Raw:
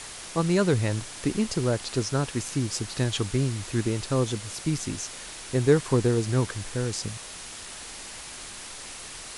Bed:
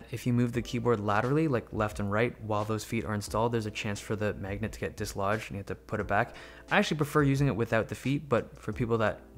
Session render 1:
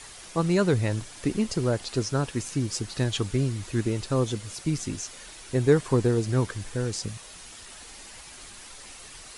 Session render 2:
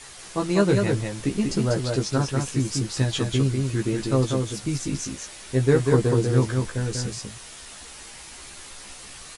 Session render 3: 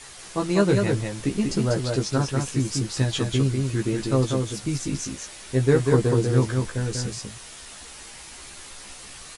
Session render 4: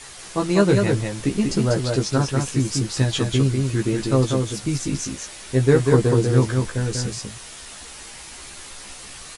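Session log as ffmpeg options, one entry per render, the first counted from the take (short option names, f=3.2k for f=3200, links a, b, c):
-af "afftdn=nr=7:nf=-41"
-filter_complex "[0:a]asplit=2[a][b];[b]adelay=15,volume=-3.5dB[c];[a][c]amix=inputs=2:normalize=0,aecho=1:1:193:0.631"
-af anull
-af "volume=3dB"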